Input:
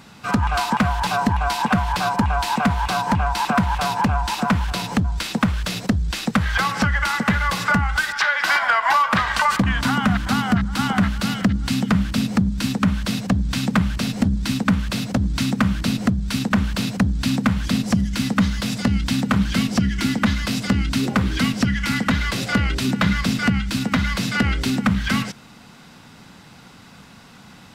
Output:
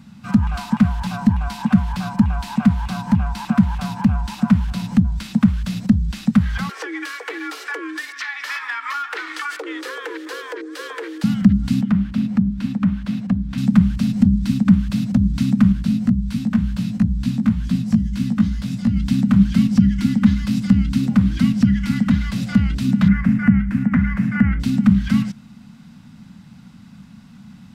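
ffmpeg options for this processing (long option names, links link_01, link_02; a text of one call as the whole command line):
ffmpeg -i in.wav -filter_complex "[0:a]asettb=1/sr,asplit=3[link_01][link_02][link_03];[link_01]atrim=end=6.694[link_04];[link_02]atrim=start=6.69:end=11.24,asetpts=PTS-STARTPTS,afade=type=in:duration=0.004:curve=qsin,afade=type=out:start_time=4.546:duration=0.004:curve=qsin,afreqshift=260[link_05];[link_03]atrim=start=11.236[link_06];[link_04][link_05]acrossfade=duration=0.004:curve1=hsin:curve2=qsin[link_07];[link_07][link_06]acrossfade=duration=0.004:curve1=qsin:curve2=hsin,asettb=1/sr,asplit=3[link_08][link_09][link_10];[link_08]atrim=end=11.814[link_11];[link_09]atrim=start=11.81:end=13.58,asetpts=PTS-STARTPTS,afade=type=in:duration=0.004:curve=qsin,afade=type=out:start_time=1.766:duration=0.004:curve=qsin,bass=frequency=250:gain=-7,treble=frequency=4000:gain=-12[link_12];[link_10]atrim=start=13.576[link_13];[link_11][link_12]acrossfade=duration=0.004:curve1=hsin:curve2=qsin[link_14];[link_14][link_13]acrossfade=duration=0.004:curve1=qsin:curve2=hsin,asettb=1/sr,asplit=3[link_15][link_16][link_17];[link_15]atrim=end=15.724[link_18];[link_16]atrim=start=15.72:end=18.97,asetpts=PTS-STARTPTS,afade=type=in:duration=0.004:curve=qsin,afade=type=out:start_time=3.246:duration=0.004:curve=qsin,flanger=delay=16:depth=2.4:speed=2[link_19];[link_17]atrim=start=18.966[link_20];[link_18][link_19]acrossfade=duration=0.004:curve1=hsin:curve2=qsin[link_21];[link_21][link_20]acrossfade=duration=0.004:curve1=qsin:curve2=hsin,asettb=1/sr,asplit=3[link_22][link_23][link_24];[link_22]atrim=end=19.574[link_25];[link_23]atrim=start=19.57:end=20.99,asetpts=PTS-STARTPTS,afade=type=in:duration=0.004:curve=qsin,afade=type=out:start_time=1.416:duration=0.004:curve=qsin,asuperstop=centerf=660:order=4:qfactor=7.2[link_26];[link_24]atrim=start=20.986[link_27];[link_25][link_26]acrossfade=duration=0.004:curve1=hsin:curve2=qsin[link_28];[link_28][link_27]acrossfade=duration=0.004:curve1=qsin:curve2=hsin,asettb=1/sr,asplit=3[link_29][link_30][link_31];[link_29]atrim=end=23.084[link_32];[link_30]atrim=start=23.08:end=24.6,asetpts=PTS-STARTPTS,afade=type=in:duration=0.004:curve=qsin,afade=type=out:start_time=1.516:duration=0.004:curve=qsin,highshelf=frequency=2700:width_type=q:width=3:gain=-13[link_33];[link_31]atrim=start=24.596[link_34];[link_32][link_33]acrossfade=duration=0.004:curve1=hsin:curve2=qsin[link_35];[link_35][link_34]acrossfade=duration=0.004:curve1=qsin:curve2=hsin,lowshelf=frequency=290:width_type=q:width=3:gain=9.5,volume=-8.5dB" out.wav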